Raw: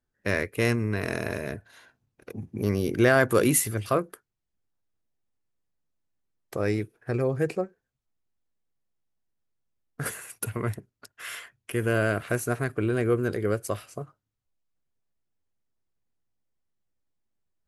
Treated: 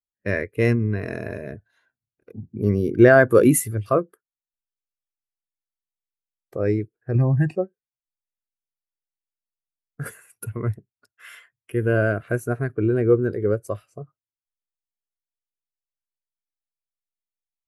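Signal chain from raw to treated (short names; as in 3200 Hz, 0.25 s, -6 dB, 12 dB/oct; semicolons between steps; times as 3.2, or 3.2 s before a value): 7.15–7.56 comb 1.1 ms, depth 99%; spectral expander 1.5:1; gain +5 dB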